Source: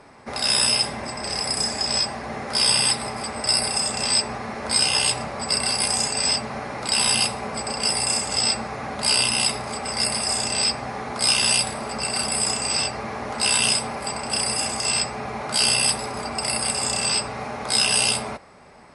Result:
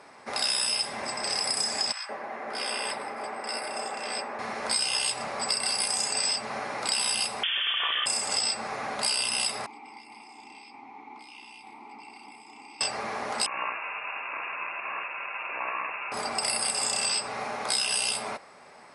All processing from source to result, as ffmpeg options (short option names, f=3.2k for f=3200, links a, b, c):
-filter_complex "[0:a]asettb=1/sr,asplit=3[a][b][c];[a]atrim=end=1.924[d];[b]atrim=start=1.92:end=4.39,asetpts=PTS-STARTPTS,afade=t=in:d=0.004:c=qsin,afade=t=out:st=2.466:d=0.004:c=qsin,acrossover=split=220 2200:gain=0.126 1 0.141[e][f][g];[e][f][g]amix=inputs=3:normalize=0,acrossover=split=1100[h][i];[h]adelay=170[j];[j][i]amix=inputs=2:normalize=0,atrim=end_sample=108927[k];[c]atrim=start=4.386[l];[d][k]acrossfade=d=0.004:c1=hsin:c2=qsin[m];[m][l]acrossfade=d=0.004:c1=qsin:c2=hsin,asettb=1/sr,asplit=3[n][o][p];[n]atrim=end=7.434[q];[o]atrim=start=7.43:end=8.06,asetpts=PTS-STARTPTS,afade=t=in:d=0.004:c=qsin,afade=t=out:st=0.626:d=0.004:c=qsin,highpass=f=450:w=0.5412,highpass=f=450:w=1.3066,acontrast=68,lowpass=f=3.3k:t=q:w=0.5098,lowpass=f=3.3k:t=q:w=0.6013,lowpass=f=3.3k:t=q:w=0.9,lowpass=f=3.3k:t=q:w=2.563,afreqshift=-3900[r];[p]atrim=start=8.056[s];[q][r]acrossfade=d=0.004:c1=hsin:c2=qsin[t];[t][s]acrossfade=d=0.004:c1=qsin:c2=hsin,asettb=1/sr,asplit=3[u][v][w];[u]atrim=end=9.664[x];[v]atrim=start=9.66:end=12.81,asetpts=PTS-STARTPTS,afade=t=in:d=0.004:c=qsin,afade=t=out:st=3.146:d=0.004:c=qsin,acompressor=threshold=-23dB:ratio=4:attack=3.2:release=140:knee=1:detection=peak,asplit=3[y][z][aa];[y]bandpass=f=300:t=q:w=8,volume=0dB[ab];[z]bandpass=f=870:t=q:w=8,volume=-6dB[ac];[aa]bandpass=f=2.24k:t=q:w=8,volume=-9dB[ad];[ab][ac][ad]amix=inputs=3:normalize=0[ae];[w]atrim=start=12.806[af];[x][ae]acrossfade=d=0.004:c1=hsin:c2=qsin[ag];[ag][af]acrossfade=d=0.004:c1=qsin:c2=hsin,asettb=1/sr,asplit=3[ah][ai][aj];[ah]atrim=end=13.464[ak];[ai]atrim=start=13.46:end=16.12,asetpts=PTS-STARTPTS,afade=t=in:d=0.004:c=qsin,afade=t=out:st=2.656:d=0.004:c=qsin,equalizer=f=81:w=0.6:g=-12,aeval=exprs='val(0)*sin(2*PI*1000*n/s)':c=same,lowpass=f=2.4k:t=q:w=0.5098,lowpass=f=2.4k:t=q:w=0.6013,lowpass=f=2.4k:t=q:w=0.9,lowpass=f=2.4k:t=q:w=2.563,afreqshift=-2800[al];[aj]atrim=start=16.116[am];[ak][al]acrossfade=d=0.004:c1=hsin:c2=qsin[an];[an][am]acrossfade=d=0.004:c1=qsin:c2=hsin,highpass=f=540:p=1,acompressor=threshold=-24dB:ratio=6"